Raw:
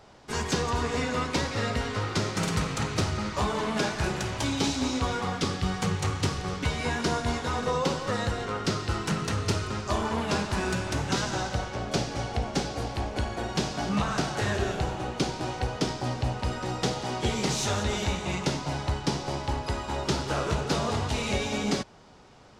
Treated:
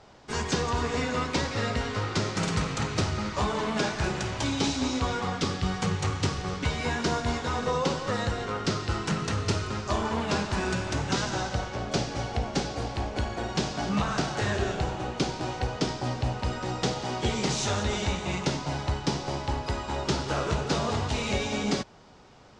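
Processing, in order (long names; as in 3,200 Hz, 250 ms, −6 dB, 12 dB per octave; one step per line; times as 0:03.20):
low-pass filter 8,200 Hz 24 dB per octave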